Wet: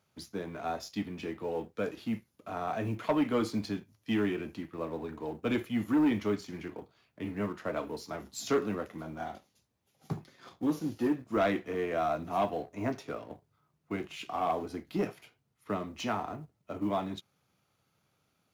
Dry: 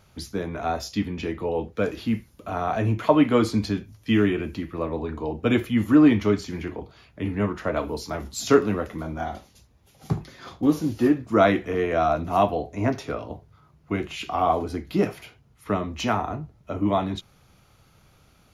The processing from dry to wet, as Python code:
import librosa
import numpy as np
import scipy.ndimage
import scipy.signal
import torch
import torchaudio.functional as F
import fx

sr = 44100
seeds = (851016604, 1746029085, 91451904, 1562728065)

y = fx.law_mismatch(x, sr, coded='A')
y = scipy.signal.sosfilt(scipy.signal.butter(2, 130.0, 'highpass', fs=sr, output='sos'), y)
y = 10.0 ** (-13.5 / 20.0) * np.tanh(y / 10.0 ** (-13.5 / 20.0))
y = y * librosa.db_to_amplitude(-7.0)